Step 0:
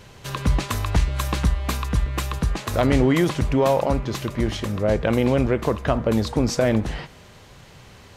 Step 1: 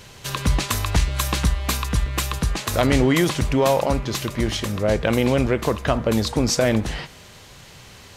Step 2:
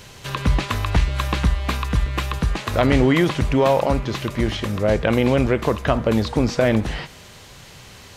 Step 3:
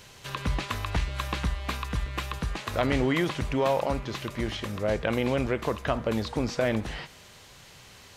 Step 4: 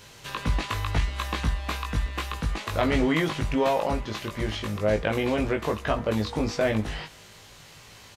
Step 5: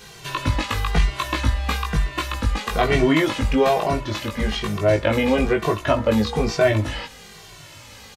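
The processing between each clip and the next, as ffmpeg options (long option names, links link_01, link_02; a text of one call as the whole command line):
ffmpeg -i in.wav -af "highshelf=frequency=2300:gain=8" out.wav
ffmpeg -i in.wav -filter_complex "[0:a]acrossover=split=3700[link_01][link_02];[link_02]acompressor=threshold=-43dB:ratio=4:attack=1:release=60[link_03];[link_01][link_03]amix=inputs=2:normalize=0,volume=1.5dB" out.wav
ffmpeg -i in.wav -af "lowshelf=frequency=430:gain=-4,volume=-6.5dB" out.wav
ffmpeg -i in.wav -filter_complex "[0:a]asplit=2[link_01][link_02];[link_02]adelay=19,volume=-3dB[link_03];[link_01][link_03]amix=inputs=2:normalize=0" out.wav
ffmpeg -i in.wav -filter_complex "[0:a]asplit=2[link_01][link_02];[link_02]adelay=2.1,afreqshift=-1.1[link_03];[link_01][link_03]amix=inputs=2:normalize=1,volume=9dB" out.wav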